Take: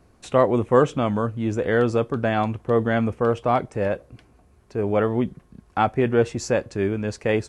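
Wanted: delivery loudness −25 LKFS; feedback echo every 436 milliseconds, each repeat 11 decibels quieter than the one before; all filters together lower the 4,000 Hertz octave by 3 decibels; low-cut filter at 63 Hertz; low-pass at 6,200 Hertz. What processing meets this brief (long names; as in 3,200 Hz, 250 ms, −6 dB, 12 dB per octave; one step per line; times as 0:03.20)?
high-pass filter 63 Hz
low-pass filter 6,200 Hz
parametric band 4,000 Hz −3.5 dB
repeating echo 436 ms, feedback 28%, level −11 dB
level −2.5 dB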